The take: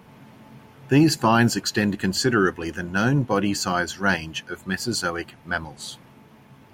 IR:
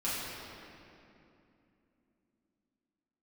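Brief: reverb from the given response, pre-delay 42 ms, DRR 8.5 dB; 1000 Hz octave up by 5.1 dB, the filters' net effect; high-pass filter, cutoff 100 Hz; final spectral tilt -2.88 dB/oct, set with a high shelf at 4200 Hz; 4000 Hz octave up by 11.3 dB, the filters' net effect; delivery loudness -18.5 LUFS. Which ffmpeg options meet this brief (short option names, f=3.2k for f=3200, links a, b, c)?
-filter_complex "[0:a]highpass=100,equalizer=f=1k:t=o:g=5.5,equalizer=f=4k:t=o:g=8.5,highshelf=f=4.2k:g=8,asplit=2[a][b];[1:a]atrim=start_sample=2205,adelay=42[c];[b][c]afir=irnorm=-1:irlink=0,volume=-15.5dB[d];[a][d]amix=inputs=2:normalize=0,volume=-1dB"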